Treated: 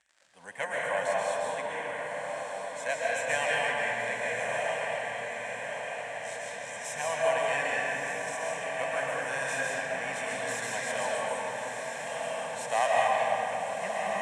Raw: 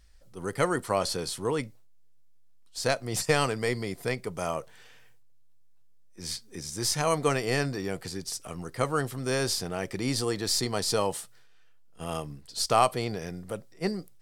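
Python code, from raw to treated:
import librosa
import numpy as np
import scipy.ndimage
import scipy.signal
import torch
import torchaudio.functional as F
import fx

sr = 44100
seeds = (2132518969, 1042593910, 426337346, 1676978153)

y = fx.self_delay(x, sr, depth_ms=0.088)
y = fx.fixed_phaser(y, sr, hz=1300.0, stages=6)
y = fx.dmg_crackle(y, sr, seeds[0], per_s=96.0, level_db=-44.0)
y = fx.cabinet(y, sr, low_hz=400.0, low_slope=12, high_hz=8500.0, hz=(430.0, 1600.0, 7700.0), db=(-7, 8, 5))
y = fx.echo_diffused(y, sr, ms=1236, feedback_pct=65, wet_db=-6.0)
y = fx.rev_freeverb(y, sr, rt60_s=3.3, hf_ratio=0.5, predelay_ms=95, drr_db=-5.5)
y = y * librosa.db_to_amplitude(-3.0)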